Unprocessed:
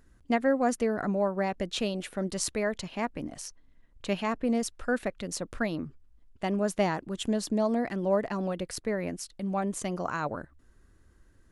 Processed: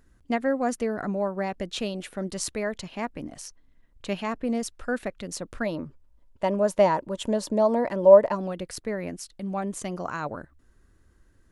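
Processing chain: 5.65–8.34 s: small resonant body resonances 570/930 Hz, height 11 dB -> 16 dB, ringing for 30 ms

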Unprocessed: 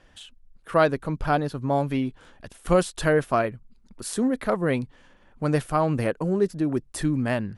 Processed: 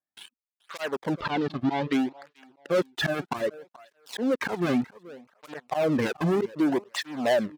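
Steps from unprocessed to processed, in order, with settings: level-controlled noise filter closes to 1.7 kHz, open at -20.5 dBFS; reverb removal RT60 1.7 s; low-pass that closes with the level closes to 1.2 kHz, closed at -20.5 dBFS; high-pass 530 Hz 6 dB/octave; gate with hold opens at -52 dBFS; treble shelf 2.3 kHz -4.5 dB; slow attack 211 ms; waveshaping leveller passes 5; 1.14–1.93 s: resonant low-pass 3.8 kHz, resonance Q 1.6; feedback delay 431 ms, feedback 23%, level -21.5 dB; cancelling through-zero flanger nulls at 0.64 Hz, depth 2.2 ms

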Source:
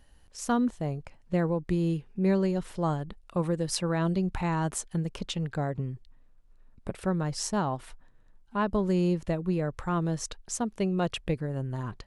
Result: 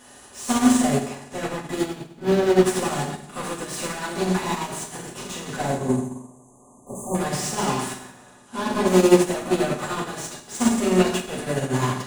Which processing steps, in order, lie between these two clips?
spectral levelling over time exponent 0.6; resonant high shelf 5.8 kHz +7 dB, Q 1.5; 1.81–2.66 s: hysteresis with a dead band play -26 dBFS; overdrive pedal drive 32 dB, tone 5.5 kHz, clips at -11 dBFS; 5.65–7.15 s: brick-wall FIR band-stop 1.2–6.1 kHz; reverberation RT60 1.2 s, pre-delay 4 ms, DRR -6.5 dB; upward expansion 2.5:1, over -19 dBFS; trim -4.5 dB

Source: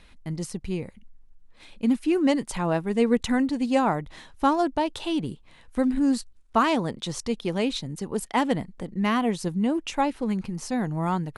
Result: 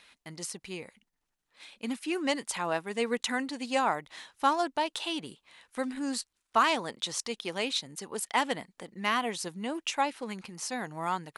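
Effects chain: high-pass 1.3 kHz 6 dB/octave; trim +2 dB

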